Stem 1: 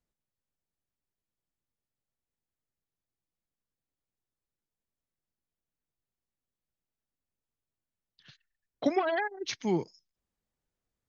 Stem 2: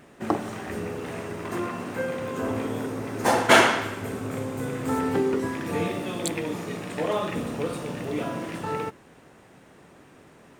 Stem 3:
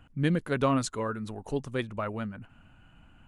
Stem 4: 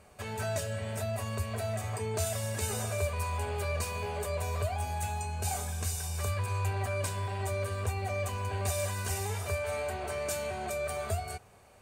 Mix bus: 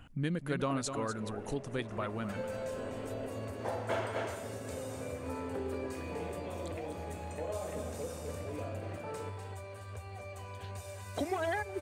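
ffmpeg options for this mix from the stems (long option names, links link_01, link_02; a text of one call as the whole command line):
ffmpeg -i stem1.wav -i stem2.wav -i stem3.wav -i stem4.wav -filter_complex "[0:a]alimiter=limit=-23.5dB:level=0:latency=1:release=233,adelay=2350,volume=-0.5dB[link_01];[1:a]lowpass=frequency=3800:poles=1,equalizer=frequency=570:width_type=o:width=0.65:gain=11,adelay=400,volume=-15dB,asplit=2[link_02][link_03];[link_03]volume=-11dB[link_04];[2:a]highshelf=frequency=5400:gain=9,volume=2dB,asplit=2[link_05][link_06];[link_06]volume=-18dB[link_07];[3:a]acompressor=threshold=-41dB:ratio=6,adelay=2100,volume=-2dB,asplit=2[link_08][link_09];[link_09]volume=-7dB[link_10];[link_02][link_05]amix=inputs=2:normalize=0,acompressor=threshold=-38dB:ratio=2,volume=0dB[link_11];[link_04][link_07][link_10]amix=inputs=3:normalize=0,aecho=0:1:248:1[link_12];[link_01][link_08][link_11][link_12]amix=inputs=4:normalize=0,highshelf=frequency=8800:gain=-6" out.wav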